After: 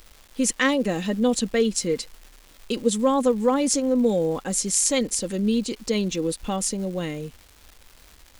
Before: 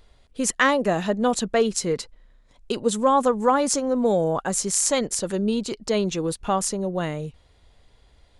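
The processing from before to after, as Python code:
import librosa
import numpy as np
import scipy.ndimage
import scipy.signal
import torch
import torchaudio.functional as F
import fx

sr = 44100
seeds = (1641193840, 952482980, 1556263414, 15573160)

y = fx.band_shelf(x, sr, hz=980.0, db=-8.5, octaves=1.7)
y = y + 0.44 * np.pad(y, (int(3.8 * sr / 1000.0), 0))[:len(y)]
y = fx.dmg_crackle(y, sr, seeds[0], per_s=520.0, level_db=-38.0)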